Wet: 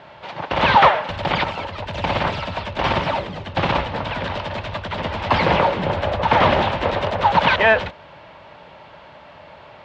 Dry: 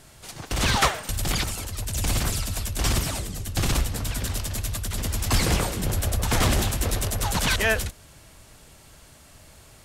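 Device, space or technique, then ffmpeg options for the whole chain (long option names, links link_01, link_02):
overdrive pedal into a guitar cabinet: -filter_complex "[0:a]asplit=2[link_01][link_02];[link_02]highpass=frequency=720:poles=1,volume=10dB,asoftclip=type=tanh:threshold=-12.5dB[link_03];[link_01][link_03]amix=inputs=2:normalize=0,lowpass=frequency=3100:poles=1,volume=-6dB,highpass=78,equalizer=frequency=170:width_type=q:width=4:gain=5,equalizer=frequency=570:width_type=q:width=4:gain=9,equalizer=frequency=910:width_type=q:width=4:gain=10,lowpass=frequency=3500:width=0.5412,lowpass=frequency=3500:width=1.3066,volume=5dB"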